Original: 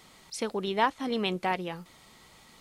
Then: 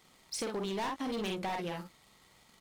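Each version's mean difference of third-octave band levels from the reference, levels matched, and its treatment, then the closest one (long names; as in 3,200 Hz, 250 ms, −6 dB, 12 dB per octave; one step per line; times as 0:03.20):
5.0 dB: leveller curve on the samples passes 2
on a send: ambience of single reflections 47 ms −5 dB, 62 ms −13 dB
on the sum: hard clipping −20.5 dBFS, distortion −10 dB
downward compressor, threshold −27 dBFS, peak gain reduction 5.5 dB
level −6.5 dB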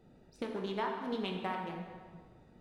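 8.5 dB: adaptive Wiener filter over 41 samples
dynamic equaliser 1,200 Hz, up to +7 dB, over −41 dBFS, Q 1.3
downward compressor, threshold −36 dBFS, peak gain reduction 19.5 dB
dense smooth reverb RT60 1.7 s, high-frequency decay 0.7×, DRR 0.5 dB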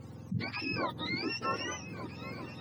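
12.5 dB: frequency axis turned over on the octave scale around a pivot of 1,000 Hz
harmonic and percussive parts rebalanced harmonic +4 dB
in parallel at −2 dB: compressor whose output falls as the input rises −37 dBFS
on the sum: echo whose low-pass opens from repeat to repeat 389 ms, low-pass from 200 Hz, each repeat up 2 octaves, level −6 dB
level −7.5 dB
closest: first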